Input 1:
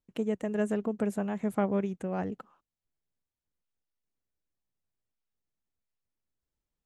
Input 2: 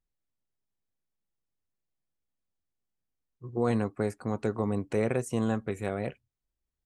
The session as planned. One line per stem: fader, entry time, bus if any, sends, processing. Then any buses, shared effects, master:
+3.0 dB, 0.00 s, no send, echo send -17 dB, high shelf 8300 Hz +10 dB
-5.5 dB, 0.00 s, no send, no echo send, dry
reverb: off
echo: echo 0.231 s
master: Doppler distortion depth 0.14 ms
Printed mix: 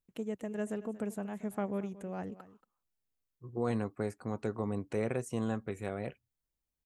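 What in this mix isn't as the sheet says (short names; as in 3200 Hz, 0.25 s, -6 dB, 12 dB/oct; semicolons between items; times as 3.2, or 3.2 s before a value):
stem 1 +3.0 dB -> -7.0 dB; master: missing Doppler distortion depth 0.14 ms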